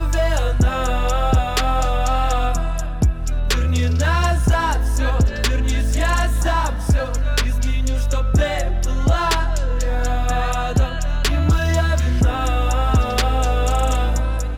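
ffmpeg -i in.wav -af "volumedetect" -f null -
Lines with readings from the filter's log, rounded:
mean_volume: -17.2 dB
max_volume: -9.3 dB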